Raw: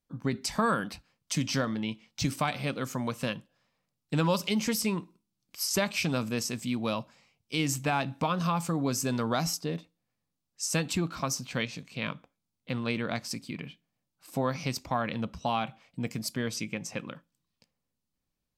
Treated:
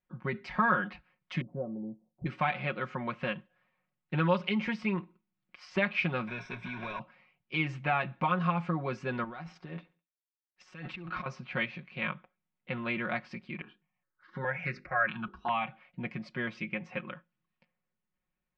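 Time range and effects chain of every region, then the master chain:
1.41–2.26 s: steep low-pass 680 Hz + bass shelf 410 Hz -4.5 dB
6.27–7.00 s: block-companded coder 3-bit + rippled EQ curve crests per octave 1.6, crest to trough 14 dB + compression 10:1, threshold -30 dBFS
9.24–11.26 s: companding laws mixed up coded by A + compressor with a negative ratio -39 dBFS + feedback delay 69 ms, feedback 41%, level -23 dB
13.61–15.67 s: peaking EQ 1.6 kHz +8.5 dB 0.66 oct + hum notches 50/100/150/200/250/300/350/400/450/500 Hz + stepped phaser 4.8 Hz 570–3200 Hz
whole clip: low-pass 2.3 kHz 24 dB/octave; tilt shelf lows -6 dB, about 1.3 kHz; comb 5.5 ms, depth 81%

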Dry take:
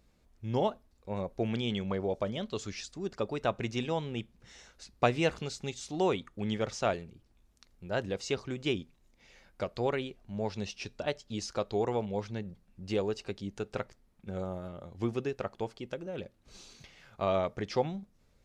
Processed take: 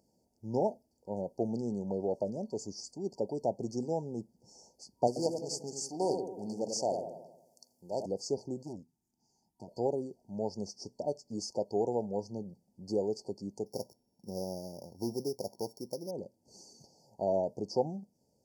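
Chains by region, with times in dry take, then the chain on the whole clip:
5.07–8.06 s: tilt EQ +2.5 dB/octave + feedback echo behind a low-pass 90 ms, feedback 51%, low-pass 940 Hz, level -5 dB + loudspeaker Doppler distortion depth 0.37 ms
8.63–9.68 s: static phaser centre 1.3 kHz, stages 4 + valve stage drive 35 dB, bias 0.75
13.66–16.11 s: sorted samples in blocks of 8 samples + overload inside the chain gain 27.5 dB
whole clip: dynamic bell 900 Hz, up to -5 dB, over -52 dBFS, Q 6.6; FFT band-reject 950–4400 Hz; high-pass 160 Hz 12 dB/octave

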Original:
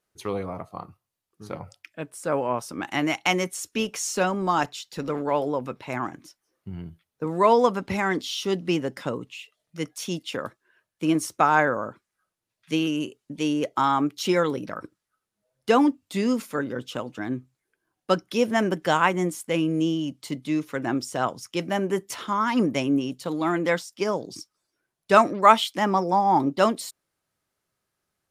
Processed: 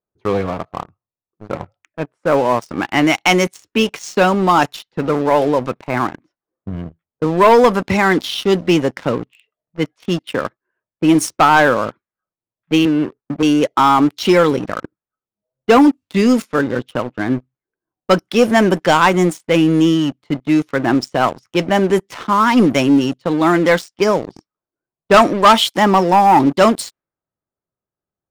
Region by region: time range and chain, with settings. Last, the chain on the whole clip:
12.85–13.43 s: dead-time distortion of 0.12 ms + low-pass 1.7 kHz 24 dB/octave + three bands compressed up and down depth 40%
whole clip: level-controlled noise filter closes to 950 Hz, open at -20 dBFS; waveshaping leveller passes 3

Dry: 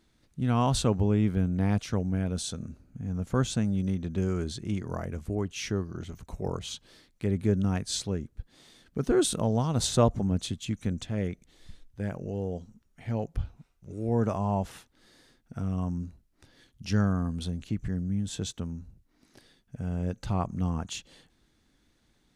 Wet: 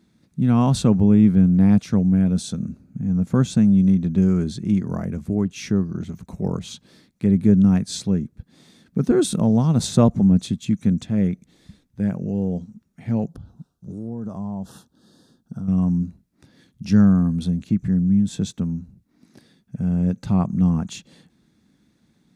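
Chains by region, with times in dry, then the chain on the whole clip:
13.27–15.68 s: Butterworth band-stop 2.2 kHz, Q 1.4 + compression 4:1, threshold -37 dBFS
whole clip: high-pass 65 Hz; peaking EQ 190 Hz +13 dB 1.2 oct; band-stop 3 kHz, Q 13; trim +1.5 dB

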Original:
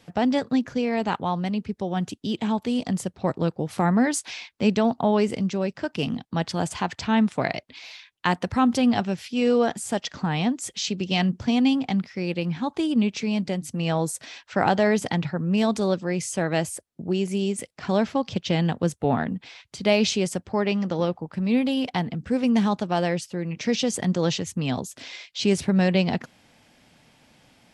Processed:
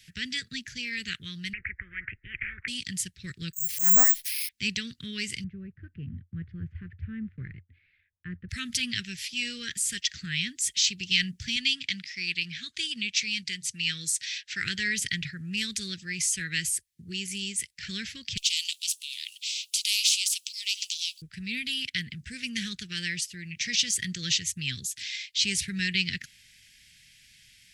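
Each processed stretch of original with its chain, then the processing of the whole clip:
1.53–2.68 s: steep low-pass 2.1 kHz 72 dB/octave + spectrum-flattening compressor 10:1
3.53–4.49 s: slow attack 129 ms + careless resampling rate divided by 6×, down filtered, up zero stuff
5.44–8.49 s: block-companded coder 5-bit + Bessel low-pass 760 Hz, order 4 + peaking EQ 88 Hz +14.5 dB 0.59 oct
11.56–14.64 s: low-pass 6.5 kHz + tilt EQ +2 dB/octave
18.37–21.22 s: steep high-pass 2.7 kHz 72 dB/octave + spectrum-flattening compressor 2:1
whole clip: elliptic band-stop 340–1800 Hz, stop band 80 dB; de-esser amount 50%; amplifier tone stack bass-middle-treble 10-0-10; trim +7.5 dB

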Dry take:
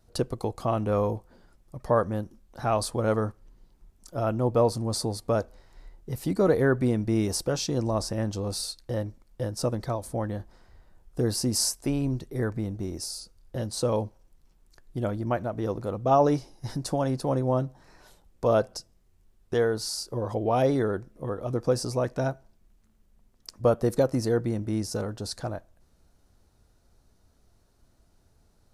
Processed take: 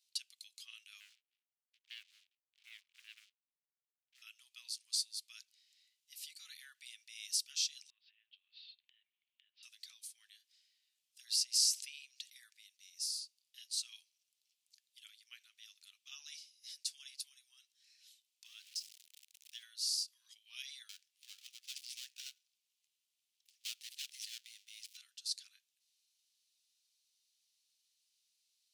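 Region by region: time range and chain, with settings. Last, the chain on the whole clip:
1.00–4.22 s: Gaussian low-pass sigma 12 samples + waveshaping leveller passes 2
7.90–9.63 s: steep low-pass 3.3 kHz 48 dB/octave + compression 16:1, threshold -39 dBFS
11.25–12.40 s: high-pass 110 Hz 6 dB/octave + treble shelf 8.7 kHz -9 dB + level flattener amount 50%
17.20–17.62 s: treble shelf 9.5 kHz +9.5 dB + compression 2:1, threshold -31 dBFS
18.45–19.63 s: jump at every zero crossing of -39 dBFS + level held to a coarse grid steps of 9 dB
20.89–24.97 s: dead-time distortion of 0.12 ms + high-pass 980 Hz
whole clip: steep high-pass 2.7 kHz 36 dB/octave; treble shelf 6.8 kHz -9 dB; trim +1 dB

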